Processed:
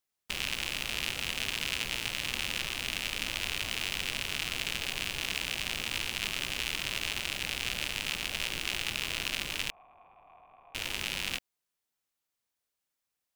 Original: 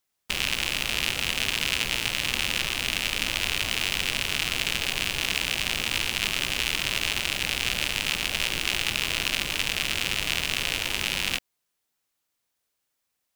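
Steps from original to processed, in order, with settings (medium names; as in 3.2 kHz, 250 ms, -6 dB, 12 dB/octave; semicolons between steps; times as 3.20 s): 9.70–10.75 s: cascade formant filter a; trim -7 dB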